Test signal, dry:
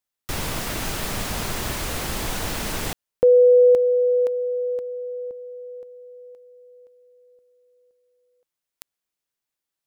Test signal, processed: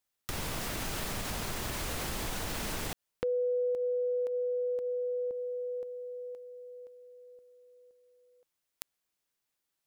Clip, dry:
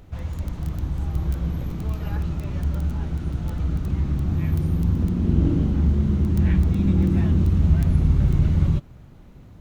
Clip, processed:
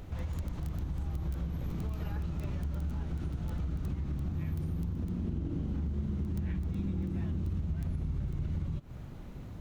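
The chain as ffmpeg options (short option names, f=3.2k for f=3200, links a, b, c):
-af "acompressor=threshold=-32dB:ratio=6:attack=1.4:release=240:knee=6:detection=peak,volume=1.5dB"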